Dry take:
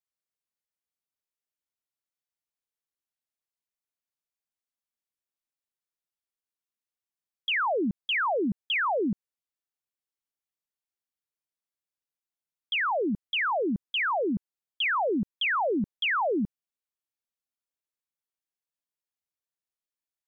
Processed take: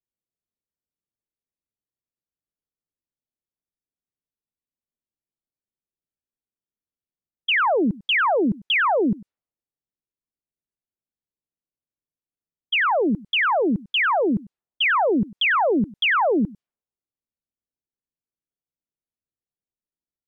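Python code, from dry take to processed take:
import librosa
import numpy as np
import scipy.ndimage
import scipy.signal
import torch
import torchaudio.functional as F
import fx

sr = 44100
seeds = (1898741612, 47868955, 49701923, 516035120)

y = x + 10.0 ** (-21.0 / 20.0) * np.pad(x, (int(98 * sr / 1000.0), 0))[:len(x)]
y = fx.env_lowpass(y, sr, base_hz=380.0, full_db=-29.5)
y = y * librosa.db_to_amplitude(7.0)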